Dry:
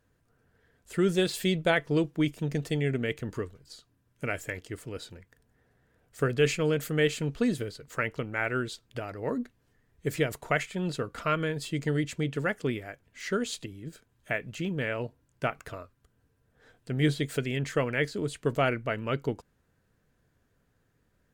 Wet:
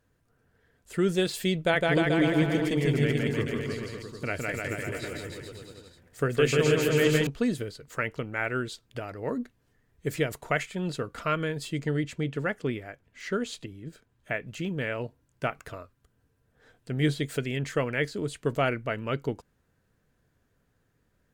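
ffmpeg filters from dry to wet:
-filter_complex "[0:a]asettb=1/sr,asplit=3[a][b][c];[a]atrim=end=1.584[d];[b]atrim=start=1.58:end=7.27,asetpts=PTS-STARTPTS,afade=t=in:d=0.004:c=qsin,afade=t=out:st=5.686:d=0.004:c=qsin,aecho=1:1:160|304|433.6|550.2|655.2|749.7|834.7|911.3:0.794|0.631|0.501|0.398|0.316|0.251|0.2|0.158,atrim=end_sample=250929[e];[c]atrim=start=7.266[f];[d][e]acrossfade=d=0.004:c1=hsin:c2=qsin[g];[g][f]acrossfade=d=0.004:c1=qsin:c2=hsin,asettb=1/sr,asplit=3[h][i][j];[h]atrim=end=11.804[k];[i]atrim=start=11.8:end=14.47,asetpts=PTS-STARTPTS,afade=t=in:d=0.004:c=qsin,afade=t=out:st=2.666:d=0.004:c=qsin,highshelf=f=5.1k:g=-7[l];[j]atrim=start=14.466[m];[k][l]acrossfade=d=0.004:c1=hsin:c2=qsin[n];[n][m]acrossfade=d=0.004:c1=qsin:c2=hsin"

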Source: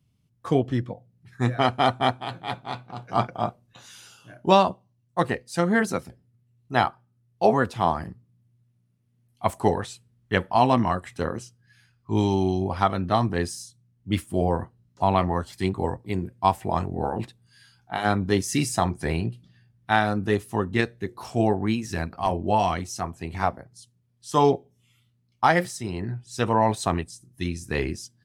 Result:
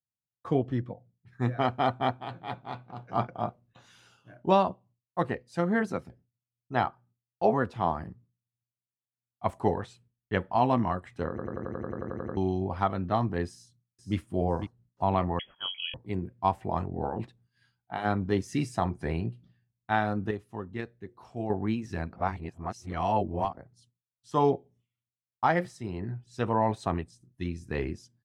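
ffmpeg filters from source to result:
-filter_complex "[0:a]asplit=2[a][b];[b]afade=t=in:st=13.48:d=0.01,afade=t=out:st=14.16:d=0.01,aecho=0:1:500|1000|1500:0.375837|0.0939594|0.0234898[c];[a][c]amix=inputs=2:normalize=0,asettb=1/sr,asplit=3[d][e][f];[d]atrim=end=15.394[g];[e]atrim=start=15.39:end=15.94,asetpts=PTS-STARTPTS,afade=t=in:d=0.004:c=qsin,afade=t=out:st=0.546:d=0.004:c=qsin,lowpass=f=2.9k:t=q:w=0.5098,lowpass=f=2.9k:t=q:w=0.6013,lowpass=f=2.9k:t=q:w=0.9,lowpass=f=2.9k:t=q:w=2.563,afreqshift=-3400[h];[f]atrim=start=15.936[i];[g][h]acrossfade=d=0.004:c1=hsin:c2=qsin[j];[j][i]acrossfade=d=0.004:c1=qsin:c2=hsin,asplit=17[k][l][m][n][o][p][q][r][s][t][u][v][w][x][y][z][aa];[k]atrim=end=11.382[ab];[l]atrim=start=11.288:end=11.382[ac];[m]atrim=start=11.288:end=11.382[ad];[n]atrim=start=11.288:end=11.382[ae];[o]atrim=start=11.288:end=11.382[af];[p]atrim=start=11.288:end=11.382[ag];[q]atrim=start=11.288:end=11.382[ah];[r]atrim=start=11.288:end=11.382[ai];[s]atrim=start=11.288:end=11.382[aj];[t]atrim=start=11.288:end=11.382[ak];[u]atrim=start=11.288:end=11.382[al];[v]atrim=start=11.288:end=11.382[am];[w]atrim=start=12.368:end=20.312[an];[x]atrim=start=20.308:end=21.502,asetpts=PTS-STARTPTS,volume=-7.5dB[ao];[y]atrim=start=21.498:end=22.162[ap];[z]atrim=start=22.158:end=23.552,asetpts=PTS-STARTPTS,areverse[aq];[aa]atrim=start=23.548[ar];[ab][ac]acrossfade=d=0.004:c1=hsin:c2=hsin[as];[as][ad]acrossfade=d=0.004:c1=hsin:c2=hsin[at];[at][ae]acrossfade=d=0.004:c1=hsin:c2=hsin[au];[au][af]acrossfade=d=0.004:c1=hsin:c2=hsin[av];[av][ag]acrossfade=d=0.004:c1=hsin:c2=hsin[aw];[aw][ah]acrossfade=d=0.004:c1=hsin:c2=hsin[ax];[ax][ai]acrossfade=d=0.004:c1=hsin:c2=hsin[ay];[ay][aj]acrossfade=d=0.004:c1=hsin:c2=hsin[az];[az][ak]acrossfade=d=0.004:c1=hsin:c2=hsin[ba];[ba][al]acrossfade=d=0.004:c1=hsin:c2=hsin[bb];[bb][am]acrossfade=d=0.004:c1=hsin:c2=hsin[bc];[bc][an]acrossfade=d=0.004:c1=hsin:c2=hsin[bd];[bd][ao]acrossfade=d=0.004:c1=hsin:c2=hsin[be];[be][ap]acrossfade=d=0.004:c1=hsin:c2=hsin[bf];[bf][aq]acrossfade=d=0.004:c1=hsin:c2=hsin[bg];[bg][ar]acrossfade=d=0.004:c1=hsin:c2=hsin,agate=range=-33dB:threshold=-49dB:ratio=3:detection=peak,lowpass=f=1.8k:p=1,volume=-4.5dB"

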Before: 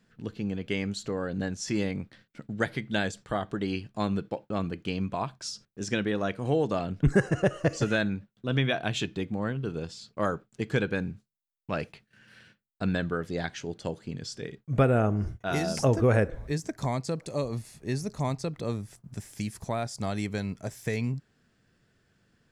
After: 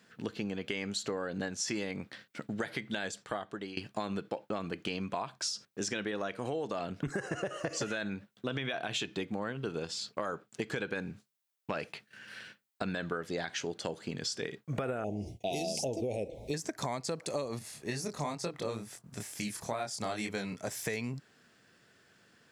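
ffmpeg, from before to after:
-filter_complex "[0:a]asettb=1/sr,asplit=3[a][b][c];[a]atrim=end=15.044[d];[b]atrim=start=15.04:end=16.54,asetpts=PTS-STARTPTS,afade=t=in:d=0.004:c=qsin,afade=t=out:st=1.496:d=0.004:c=qsin,asuperstop=centerf=1400:order=8:qfactor=0.85[e];[c]atrim=start=16.536[f];[d][e]acrossfade=d=0.004:c1=hsin:c2=qsin[g];[g][f]acrossfade=d=0.004:c1=qsin:c2=hsin,asettb=1/sr,asplit=3[h][i][j];[h]atrim=end=17.594[k];[i]atrim=start=17.59:end=20.68,asetpts=PTS-STARTPTS,afade=t=in:d=0.004:c=qsin,afade=t=out:st=3.086:d=0.004:c=qsin,flanger=delay=22.5:depth=5:speed=2.2[l];[j]atrim=start=20.676[m];[k][l]acrossfade=d=0.004:c1=hsin:c2=qsin[n];[n][m]acrossfade=d=0.004:c1=qsin:c2=hsin,asplit=2[o][p];[o]atrim=end=3.77,asetpts=PTS-STARTPTS,afade=t=out:st=2.8:d=0.97:silence=0.1[q];[p]atrim=start=3.77,asetpts=PTS-STARTPTS,afade=t=in:d=0.004:c=hsin:silence=0.1[r];[q][r]concat=n=2:v=0:a=1,highpass=f=470:p=1,alimiter=limit=-23dB:level=0:latency=1:release=47,acompressor=threshold=-40dB:ratio=6,volume=8dB"

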